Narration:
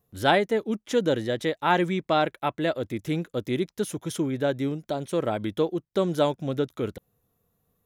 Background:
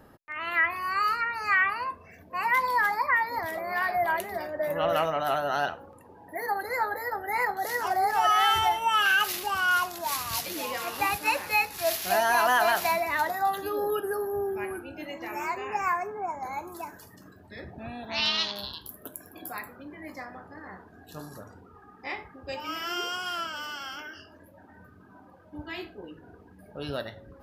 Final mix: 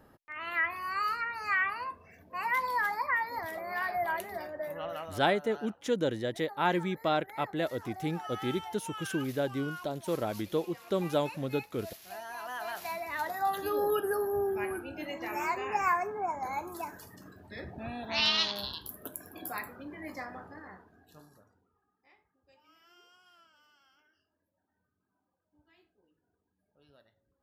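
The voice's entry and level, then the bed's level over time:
4.95 s, -6.0 dB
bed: 4.48 s -5.5 dB
5.27 s -19 dB
12.37 s -19 dB
13.70 s -0.5 dB
20.43 s -0.5 dB
22.03 s -29.5 dB

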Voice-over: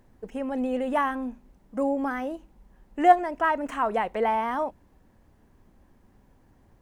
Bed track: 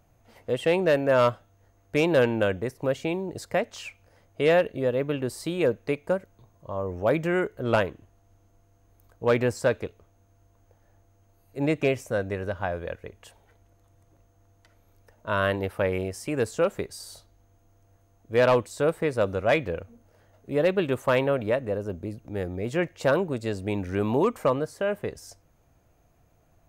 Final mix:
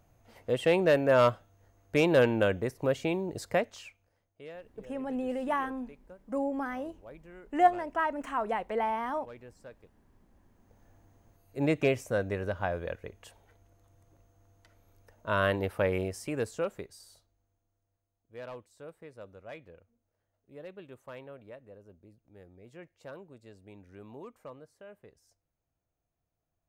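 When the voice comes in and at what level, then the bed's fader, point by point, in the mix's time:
4.55 s, -5.5 dB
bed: 3.57 s -2 dB
4.53 s -26 dB
9.95 s -26 dB
10.82 s -2.5 dB
16.04 s -2.5 dB
18.05 s -23 dB

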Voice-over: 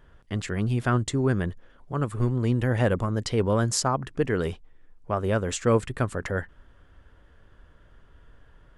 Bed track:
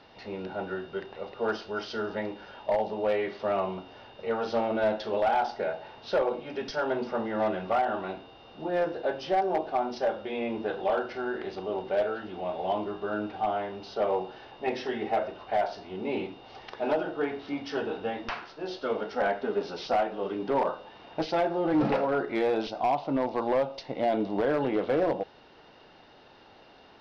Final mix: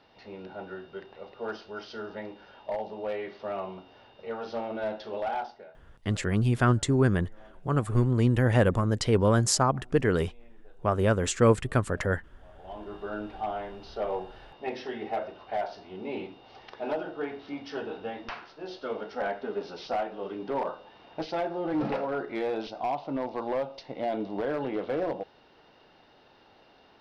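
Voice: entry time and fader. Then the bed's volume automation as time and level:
5.75 s, +1.0 dB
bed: 5.39 s -6 dB
5.84 s -27.5 dB
12.38 s -27.5 dB
12.95 s -4 dB

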